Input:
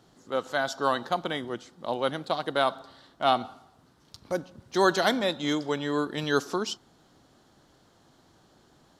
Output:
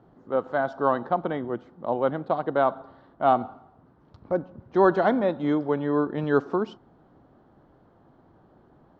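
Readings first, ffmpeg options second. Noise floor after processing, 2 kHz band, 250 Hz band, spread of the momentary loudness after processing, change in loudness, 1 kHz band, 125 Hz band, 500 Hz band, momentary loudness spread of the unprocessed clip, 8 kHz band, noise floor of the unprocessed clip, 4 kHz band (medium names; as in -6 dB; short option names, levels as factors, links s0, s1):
-59 dBFS, -3.0 dB, +4.5 dB, 9 LU, +3.0 dB, +2.5 dB, +4.5 dB, +4.5 dB, 10 LU, under -25 dB, -62 dBFS, -15.5 dB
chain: -af "lowpass=1100,volume=1.68"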